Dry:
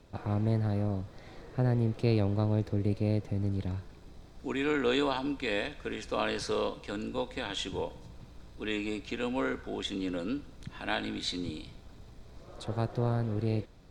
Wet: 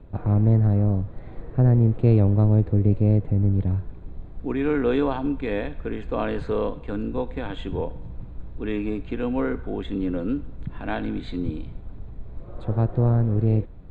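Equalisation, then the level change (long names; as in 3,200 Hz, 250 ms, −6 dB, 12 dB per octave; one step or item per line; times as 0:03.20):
moving average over 8 samples
spectral tilt −2.5 dB per octave
+3.5 dB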